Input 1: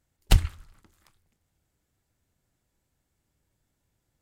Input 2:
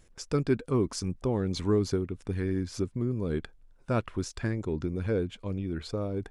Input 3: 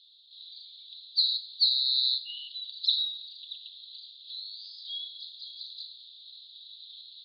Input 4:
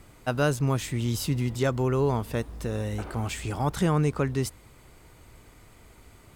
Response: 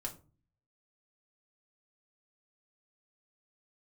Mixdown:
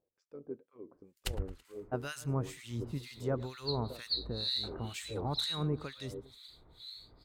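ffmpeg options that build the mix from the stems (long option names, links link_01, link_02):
-filter_complex "[0:a]acompressor=threshold=-21dB:ratio=6,adelay=950,volume=-4.5dB,asplit=2[link_01][link_02];[link_02]volume=-9.5dB[link_03];[1:a]dynaudnorm=framelen=450:gausssize=3:maxgain=3dB,tremolo=f=91:d=0.571,bandpass=frequency=490:width_type=q:width=1.9:csg=0,volume=-10dB,asplit=2[link_04][link_05];[link_05]volume=-12.5dB[link_06];[2:a]aemphasis=mode=production:type=75kf,adelay=2500,volume=-13.5dB[link_07];[3:a]acontrast=66,adelay=1650,volume=-13.5dB,asplit=2[link_08][link_09];[link_09]volume=-16dB[link_10];[4:a]atrim=start_sample=2205[link_11];[link_06][link_11]afir=irnorm=-1:irlink=0[link_12];[link_03][link_10]amix=inputs=2:normalize=0,aecho=0:1:110|220|330|440|550:1|0.35|0.122|0.0429|0.015[link_13];[link_01][link_04][link_07][link_08][link_12][link_13]amix=inputs=6:normalize=0,acrossover=split=1400[link_14][link_15];[link_14]aeval=exprs='val(0)*(1-1/2+1/2*cos(2*PI*2.1*n/s))':channel_layout=same[link_16];[link_15]aeval=exprs='val(0)*(1-1/2-1/2*cos(2*PI*2.1*n/s))':channel_layout=same[link_17];[link_16][link_17]amix=inputs=2:normalize=0"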